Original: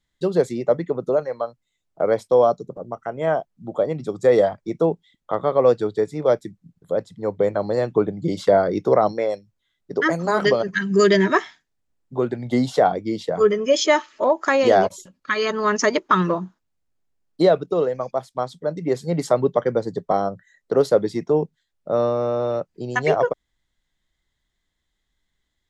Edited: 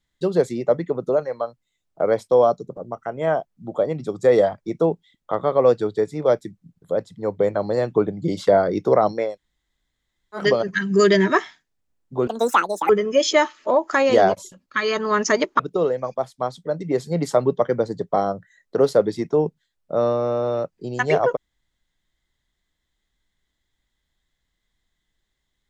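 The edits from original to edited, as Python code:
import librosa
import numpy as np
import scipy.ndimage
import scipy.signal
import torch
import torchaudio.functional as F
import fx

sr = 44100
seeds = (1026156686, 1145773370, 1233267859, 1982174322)

y = fx.edit(x, sr, fx.room_tone_fill(start_s=9.3, length_s=1.1, crossfade_s=0.16),
    fx.speed_span(start_s=12.27, length_s=1.16, speed=1.86),
    fx.cut(start_s=16.13, length_s=1.43), tone=tone)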